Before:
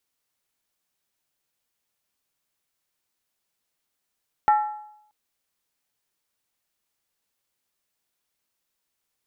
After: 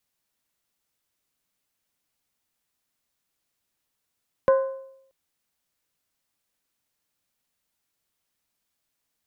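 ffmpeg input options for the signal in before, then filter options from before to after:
-f lavfi -i "aevalsrc='0.237*pow(10,-3*t/0.75)*sin(2*PI*845*t)+0.0794*pow(10,-3*t/0.594)*sin(2*PI*1346.9*t)+0.0266*pow(10,-3*t/0.513)*sin(2*PI*1804.9*t)+0.00891*pow(10,-3*t/0.495)*sin(2*PI*1940.1*t)+0.00299*pow(10,-3*t/0.46)*sin(2*PI*2241.8*t)':d=0.63:s=44100"
-af "afreqshift=-310"

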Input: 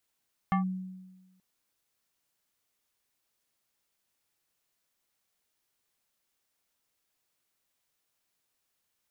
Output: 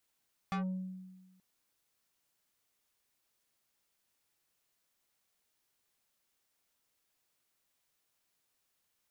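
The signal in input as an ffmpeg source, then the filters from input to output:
-f lavfi -i "aevalsrc='0.0841*pow(10,-3*t/1.22)*sin(2*PI*186*t+1.2*clip(1-t/0.12,0,1)*sin(2*PI*5.23*186*t))':d=0.88:s=44100"
-af "asoftclip=type=tanh:threshold=0.0224"

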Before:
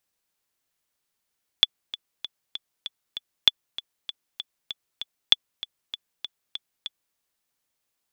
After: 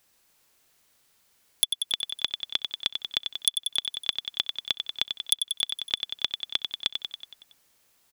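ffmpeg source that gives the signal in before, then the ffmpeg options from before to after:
-f lavfi -i "aevalsrc='pow(10,(-1.5-17*gte(mod(t,6*60/195),60/195))/20)*sin(2*PI*3450*mod(t,60/195))*exp(-6.91*mod(t,60/195)/0.03)':d=5.53:s=44100"
-filter_complex "[0:a]aeval=exprs='0.841*sin(PI/2*2.82*val(0)/0.841)':c=same,asplit=2[s0][s1];[s1]aecho=0:1:93|186|279|372|465|558|651:0.447|0.259|0.15|0.0872|0.0505|0.0293|0.017[s2];[s0][s2]amix=inputs=2:normalize=0,acompressor=threshold=0.0708:ratio=4"

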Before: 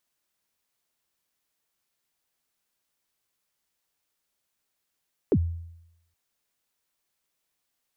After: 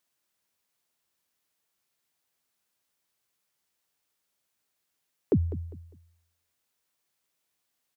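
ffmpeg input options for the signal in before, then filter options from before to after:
-f lavfi -i "aevalsrc='0.168*pow(10,-3*t/0.83)*sin(2*PI*(490*0.059/log(84/490)*(exp(log(84/490)*min(t,0.059)/0.059)-1)+84*max(t-0.059,0)))':d=0.82:s=44100"
-af "highpass=60,aecho=1:1:201|402|603:0.178|0.0498|0.0139"

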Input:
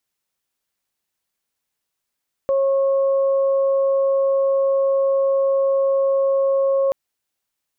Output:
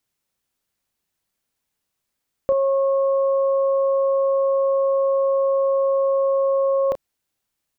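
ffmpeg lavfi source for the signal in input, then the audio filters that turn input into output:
-f lavfi -i "aevalsrc='0.178*sin(2*PI*545*t)+0.0282*sin(2*PI*1090*t)':d=4.43:s=44100"
-filter_complex "[0:a]lowshelf=f=340:g=6.5,asplit=2[s0][s1];[s1]adelay=32,volume=0.335[s2];[s0][s2]amix=inputs=2:normalize=0"

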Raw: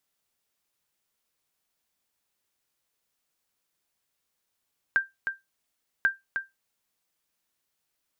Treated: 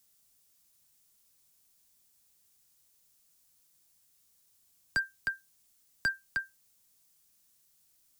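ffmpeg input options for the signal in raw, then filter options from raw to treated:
-f lavfi -i "aevalsrc='0.2*(sin(2*PI*1580*mod(t,1.09))*exp(-6.91*mod(t,1.09)/0.18)+0.447*sin(2*PI*1580*max(mod(t,1.09)-0.31,0))*exp(-6.91*max(mod(t,1.09)-0.31,0)/0.18))':d=2.18:s=44100"
-filter_complex "[0:a]bass=f=250:g=10,treble=f=4000:g=13,acrossover=split=110|310|850[s0][s1][s2][s3];[s3]asoftclip=type=hard:threshold=0.0473[s4];[s0][s1][s2][s4]amix=inputs=4:normalize=0"

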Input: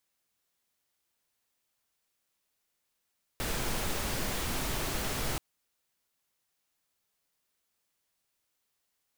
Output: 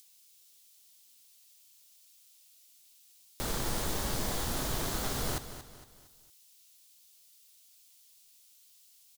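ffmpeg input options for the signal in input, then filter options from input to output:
-f lavfi -i "anoisesrc=c=pink:a=0.122:d=1.98:r=44100:seed=1"
-filter_complex "[0:a]acrossover=split=2800[s0][s1];[s0]acrusher=samples=16:mix=1:aa=0.000001[s2];[s1]acompressor=mode=upward:threshold=0.00631:ratio=2.5[s3];[s2][s3]amix=inputs=2:normalize=0,aecho=1:1:230|460|690|920:0.251|0.103|0.0422|0.0173"

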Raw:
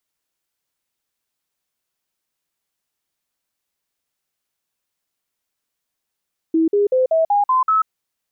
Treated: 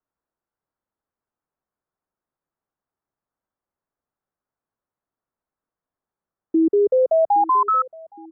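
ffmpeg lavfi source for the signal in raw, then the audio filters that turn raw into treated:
-f lavfi -i "aevalsrc='0.237*clip(min(mod(t,0.19),0.14-mod(t,0.19))/0.005,0,1)*sin(2*PI*324*pow(2,floor(t/0.19)/3)*mod(t,0.19))':d=1.33:s=44100"
-filter_complex "[0:a]lowpass=f=1400:w=0.5412,lowpass=f=1400:w=1.3066,acrossover=split=110|640[s0][s1][s2];[s0]aeval=exprs='clip(val(0),-1,0.00141)':c=same[s3];[s1]aecho=1:1:816|1632|2448:0.141|0.0579|0.0237[s4];[s3][s4][s2]amix=inputs=3:normalize=0"

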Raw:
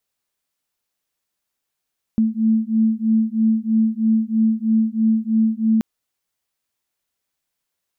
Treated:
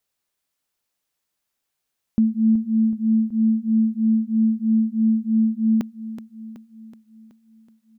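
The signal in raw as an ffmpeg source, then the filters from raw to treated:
-f lavfi -i "aevalsrc='0.126*(sin(2*PI*220*t)+sin(2*PI*223.1*t))':d=3.63:s=44100"
-af "aecho=1:1:375|750|1125|1500|1875|2250:0.251|0.141|0.0788|0.0441|0.0247|0.0138"

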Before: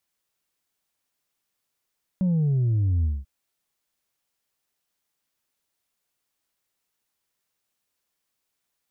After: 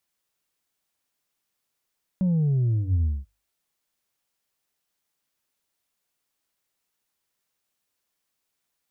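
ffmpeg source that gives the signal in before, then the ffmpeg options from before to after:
-f lavfi -i "aevalsrc='0.106*clip((1.04-t)/0.21,0,1)*tanh(1.26*sin(2*PI*190*1.04/log(65/190)*(exp(log(65/190)*t/1.04)-1)))/tanh(1.26)':d=1.04:s=44100"
-af "bandreject=f=50:t=h:w=6,bandreject=f=100:t=h:w=6"

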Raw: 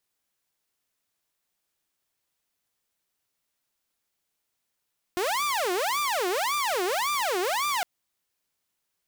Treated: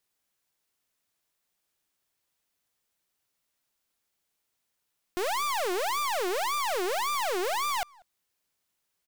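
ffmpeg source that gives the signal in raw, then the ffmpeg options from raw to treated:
-f lavfi -i "aevalsrc='0.0794*(2*mod((771.5*t-418.5/(2*PI*1.8)*sin(2*PI*1.8*t)),1)-1)':d=2.66:s=44100"
-filter_complex "[0:a]aeval=exprs='clip(val(0),-1,0.0251)':c=same,asplit=2[s0][s1];[s1]adelay=190,highpass=300,lowpass=3400,asoftclip=type=hard:threshold=0.0266,volume=0.0794[s2];[s0][s2]amix=inputs=2:normalize=0"

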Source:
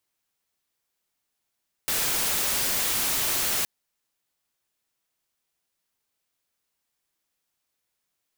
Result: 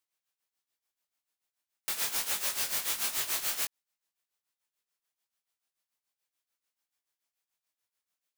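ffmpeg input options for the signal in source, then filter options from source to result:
-f lavfi -i "anoisesrc=c=white:a=0.0919:d=1.77:r=44100:seed=1"
-af "lowshelf=f=380:g=-10,tremolo=f=6.9:d=0.78,flanger=delay=16.5:depth=6.6:speed=1.3"

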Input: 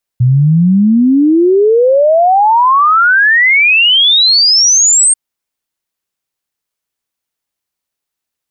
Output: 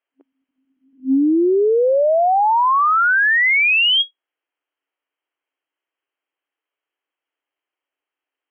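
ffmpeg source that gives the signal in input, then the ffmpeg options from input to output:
-f lavfi -i "aevalsrc='0.562*clip(min(t,4.94-t)/0.01,0,1)*sin(2*PI*120*4.94/log(8700/120)*(exp(log(8700/120)*t/4.94)-1))':d=4.94:s=44100"
-af "afftfilt=real='re*between(b*sr/4096,260,3300)':imag='im*between(b*sr/4096,260,3300)':win_size=4096:overlap=0.75,acompressor=threshold=0.2:ratio=6"

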